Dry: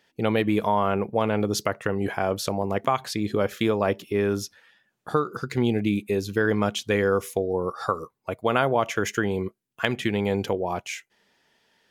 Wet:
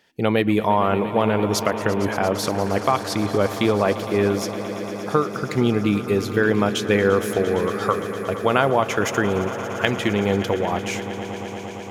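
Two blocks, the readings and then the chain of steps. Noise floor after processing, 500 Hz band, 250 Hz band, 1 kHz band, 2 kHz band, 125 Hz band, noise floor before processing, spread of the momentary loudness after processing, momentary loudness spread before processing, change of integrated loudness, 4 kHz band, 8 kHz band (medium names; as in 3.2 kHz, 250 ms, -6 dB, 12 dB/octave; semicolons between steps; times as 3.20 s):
-31 dBFS, +4.5 dB, +4.5 dB, +4.5 dB, +4.5 dB, +4.5 dB, -75 dBFS, 8 LU, 7 LU, +4.0 dB, +4.5 dB, +4.5 dB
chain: echo with a slow build-up 115 ms, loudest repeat 5, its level -16 dB; trim +3.5 dB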